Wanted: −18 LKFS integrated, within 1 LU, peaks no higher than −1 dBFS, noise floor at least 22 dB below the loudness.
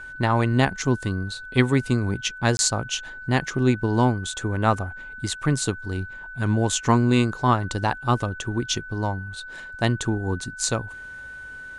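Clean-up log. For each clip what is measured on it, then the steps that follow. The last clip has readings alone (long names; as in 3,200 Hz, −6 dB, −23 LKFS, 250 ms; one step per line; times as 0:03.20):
number of dropouts 1; longest dropout 21 ms; interfering tone 1,500 Hz; level of the tone −36 dBFS; integrated loudness −24.0 LKFS; sample peak −4.5 dBFS; target loudness −18.0 LKFS
→ repair the gap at 0:02.57, 21 ms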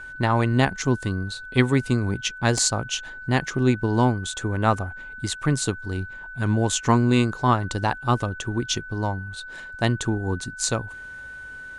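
number of dropouts 0; interfering tone 1,500 Hz; level of the tone −36 dBFS
→ notch filter 1,500 Hz, Q 30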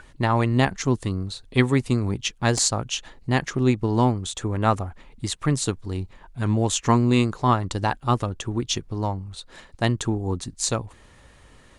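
interfering tone none found; integrated loudness −24.0 LKFS; sample peak −5.0 dBFS; target loudness −18.0 LKFS
→ level +6 dB
brickwall limiter −1 dBFS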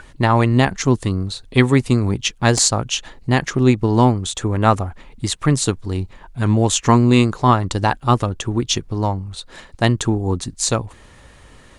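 integrated loudness −18.0 LKFS; sample peak −1.0 dBFS; background noise floor −46 dBFS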